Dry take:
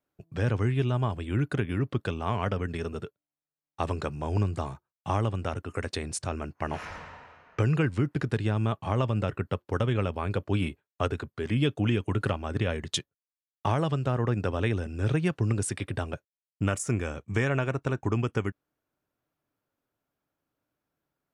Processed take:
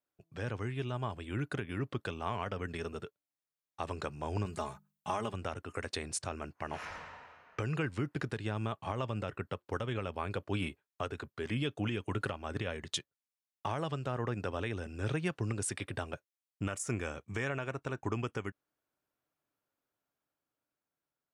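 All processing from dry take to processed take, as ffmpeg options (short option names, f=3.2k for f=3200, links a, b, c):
-filter_complex "[0:a]asettb=1/sr,asplit=3[a][b][c];[a]atrim=end=4.454[d];[b]atrim=start=4.45:end=5.34,asetpts=PTS-STARTPTS,afade=t=in:d=0.004:c=qsin,afade=t=out:st=0.886:d=0.004:c=qsin,highshelf=f=9.4k:g=10,bandreject=f=50:t=h:w=6,bandreject=f=100:t=h:w=6,bandreject=f=150:t=h:w=6,bandreject=f=200:t=h:w=6,aecho=1:1:4.8:0.6,atrim=end_sample=39249[e];[c]atrim=start=5.336[f];[d][e]acrossfade=d=0.004:c1=hsin:c2=qsin[g];[g][f]acrossfade=d=0.004:c1=qsin:c2=hsin,lowshelf=f=360:g=-7,dynaudnorm=f=140:g=17:m=4dB,alimiter=limit=-15.5dB:level=0:latency=1:release=205,volume=-6.5dB"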